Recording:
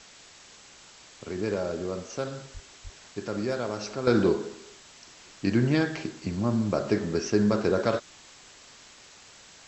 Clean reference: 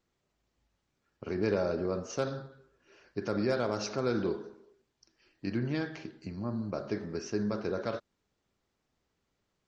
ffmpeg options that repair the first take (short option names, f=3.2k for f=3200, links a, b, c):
-filter_complex "[0:a]asplit=3[a][b][c];[a]afade=t=out:st=2.53:d=0.02[d];[b]highpass=f=140:w=0.5412,highpass=f=140:w=1.3066,afade=t=in:st=2.53:d=0.02,afade=t=out:st=2.65:d=0.02[e];[c]afade=t=in:st=2.65:d=0.02[f];[d][e][f]amix=inputs=3:normalize=0,asplit=3[g][h][i];[g]afade=t=out:st=2.83:d=0.02[j];[h]highpass=f=140:w=0.5412,highpass=f=140:w=1.3066,afade=t=in:st=2.83:d=0.02,afade=t=out:st=2.95:d=0.02[k];[i]afade=t=in:st=2.95:d=0.02[l];[j][k][l]amix=inputs=3:normalize=0,afwtdn=0.0045,asetnsamples=n=441:p=0,asendcmd='4.07 volume volume -9dB',volume=0dB"